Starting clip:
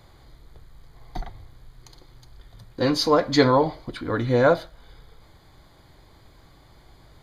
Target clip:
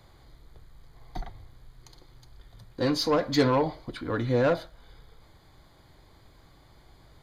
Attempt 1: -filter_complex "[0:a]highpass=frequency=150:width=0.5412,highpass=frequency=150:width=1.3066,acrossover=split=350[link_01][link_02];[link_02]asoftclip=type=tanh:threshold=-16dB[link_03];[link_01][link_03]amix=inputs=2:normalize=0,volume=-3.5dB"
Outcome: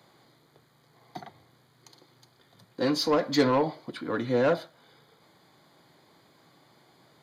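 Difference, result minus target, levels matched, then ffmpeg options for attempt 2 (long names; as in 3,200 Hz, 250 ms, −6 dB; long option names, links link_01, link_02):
125 Hz band −5.0 dB
-filter_complex "[0:a]acrossover=split=350[link_01][link_02];[link_02]asoftclip=type=tanh:threshold=-16dB[link_03];[link_01][link_03]amix=inputs=2:normalize=0,volume=-3.5dB"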